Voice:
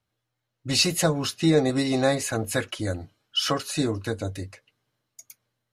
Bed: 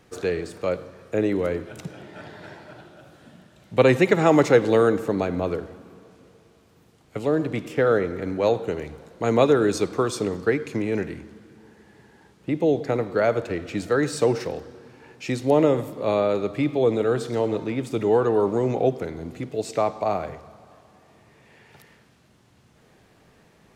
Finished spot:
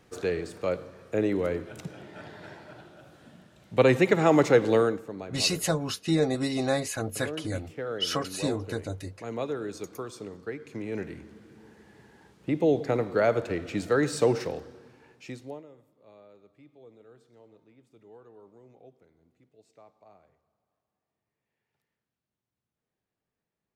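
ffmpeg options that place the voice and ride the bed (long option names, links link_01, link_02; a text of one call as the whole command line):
ffmpeg -i stem1.wav -i stem2.wav -filter_complex "[0:a]adelay=4650,volume=-4.5dB[link_01];[1:a]volume=8.5dB,afade=type=out:start_time=4.77:duration=0.25:silence=0.281838,afade=type=in:start_time=10.58:duration=1.03:silence=0.251189,afade=type=out:start_time=14.41:duration=1.22:silence=0.0334965[link_02];[link_01][link_02]amix=inputs=2:normalize=0" out.wav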